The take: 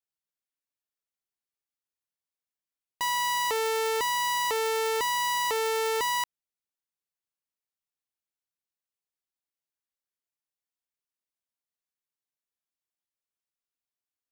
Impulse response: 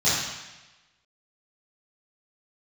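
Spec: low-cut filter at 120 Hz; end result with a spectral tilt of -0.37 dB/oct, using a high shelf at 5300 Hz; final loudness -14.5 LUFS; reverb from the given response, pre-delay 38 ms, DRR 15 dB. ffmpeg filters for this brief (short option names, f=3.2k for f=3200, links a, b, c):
-filter_complex "[0:a]highpass=120,highshelf=f=5.3k:g=-4.5,asplit=2[a][b];[1:a]atrim=start_sample=2205,adelay=38[c];[b][c]afir=irnorm=-1:irlink=0,volume=-31dB[d];[a][d]amix=inputs=2:normalize=0,volume=13.5dB"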